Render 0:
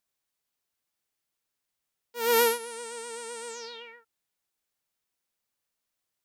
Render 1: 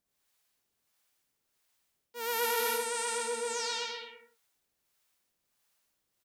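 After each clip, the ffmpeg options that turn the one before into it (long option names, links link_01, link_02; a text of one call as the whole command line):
ffmpeg -i in.wav -filter_complex "[0:a]acrossover=split=580[link_01][link_02];[link_01]aeval=exprs='val(0)*(1-0.7/2+0.7/2*cos(2*PI*1.5*n/s))':channel_layout=same[link_03];[link_02]aeval=exprs='val(0)*(1-0.7/2-0.7/2*cos(2*PI*1.5*n/s))':channel_layout=same[link_04];[link_03][link_04]amix=inputs=2:normalize=0,aecho=1:1:110|192.5|254.4|300.8|335.6:0.631|0.398|0.251|0.158|0.1,areverse,acompressor=threshold=-35dB:ratio=8,areverse,volume=7.5dB" out.wav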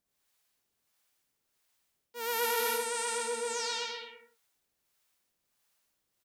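ffmpeg -i in.wav -af anull out.wav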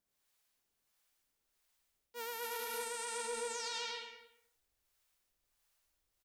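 ffmpeg -i in.wav -af "aecho=1:1:227:0.126,asubboost=boost=7.5:cutoff=61,alimiter=level_in=3dB:limit=-24dB:level=0:latency=1:release=41,volume=-3dB,volume=-3dB" out.wav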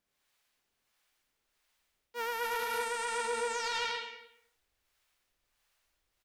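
ffmpeg -i in.wav -filter_complex "[0:a]equalizer=frequency=2000:width=0.41:gain=10.5,asplit=2[link_01][link_02];[link_02]adynamicsmooth=sensitivity=2.5:basefreq=980,volume=-0.5dB[link_03];[link_01][link_03]amix=inputs=2:normalize=0,volume=-2.5dB" out.wav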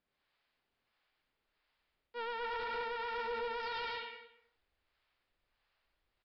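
ffmpeg -i in.wav -af "aresample=11025,asoftclip=type=tanh:threshold=-33dB,aresample=44100,lowpass=frequency=3100:poles=1" out.wav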